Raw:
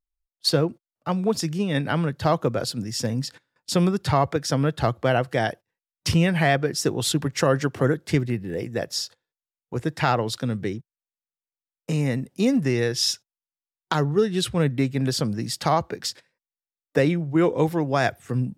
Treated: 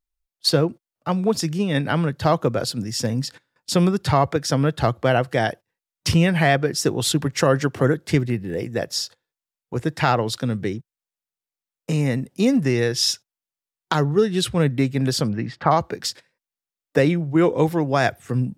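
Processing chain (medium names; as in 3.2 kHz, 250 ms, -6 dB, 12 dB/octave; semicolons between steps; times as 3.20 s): 15.28–15.70 s: resonant low-pass 2.9 kHz -> 1.3 kHz, resonance Q 1.6; trim +2.5 dB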